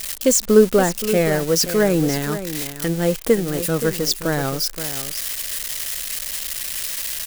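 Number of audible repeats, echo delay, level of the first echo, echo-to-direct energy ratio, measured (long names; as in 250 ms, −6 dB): 1, 524 ms, −11.5 dB, −11.5 dB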